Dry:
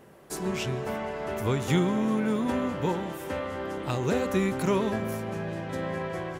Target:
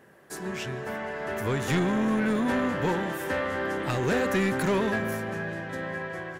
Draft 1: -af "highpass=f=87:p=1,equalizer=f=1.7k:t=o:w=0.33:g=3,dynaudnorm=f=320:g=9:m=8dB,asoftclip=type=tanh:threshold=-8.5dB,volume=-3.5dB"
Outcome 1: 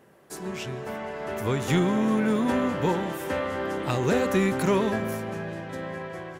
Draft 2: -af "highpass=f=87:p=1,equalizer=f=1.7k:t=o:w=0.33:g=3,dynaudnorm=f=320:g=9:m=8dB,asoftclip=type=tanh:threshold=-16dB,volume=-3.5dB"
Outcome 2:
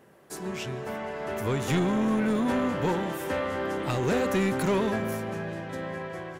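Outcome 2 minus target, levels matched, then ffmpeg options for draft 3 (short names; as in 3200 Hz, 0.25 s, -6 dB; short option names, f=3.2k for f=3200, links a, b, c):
2000 Hz band -4.0 dB
-af "highpass=f=87:p=1,equalizer=f=1.7k:t=o:w=0.33:g=11,dynaudnorm=f=320:g=9:m=8dB,asoftclip=type=tanh:threshold=-16dB,volume=-3.5dB"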